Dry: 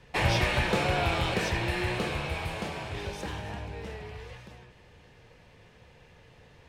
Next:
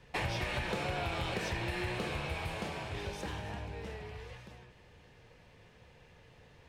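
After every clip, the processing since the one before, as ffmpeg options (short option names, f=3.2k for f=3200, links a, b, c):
-af "acompressor=threshold=-28dB:ratio=6,volume=-3.5dB"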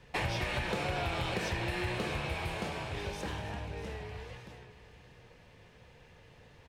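-af "aecho=1:1:642:0.188,volume=1.5dB"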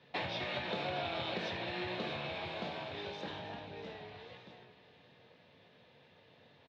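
-filter_complex "[0:a]highpass=f=110:w=0.5412,highpass=f=110:w=1.3066,equalizer=f=120:t=q:w=4:g=-5,equalizer=f=260:t=q:w=4:g=4,equalizer=f=640:t=q:w=4:g=6,equalizer=f=3.7k:t=q:w=4:g=9,lowpass=f=4.8k:w=0.5412,lowpass=f=4.8k:w=1.3066,asplit=2[a][b];[b]adelay=22,volume=-11dB[c];[a][c]amix=inputs=2:normalize=0,volume=-5.5dB"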